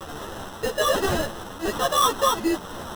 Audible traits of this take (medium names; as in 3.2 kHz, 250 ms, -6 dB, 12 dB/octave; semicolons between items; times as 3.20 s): a quantiser's noise floor 6-bit, dither triangular; tremolo triangle 1.1 Hz, depth 40%; aliases and images of a low sample rate 2.3 kHz, jitter 0%; a shimmering, thickened sound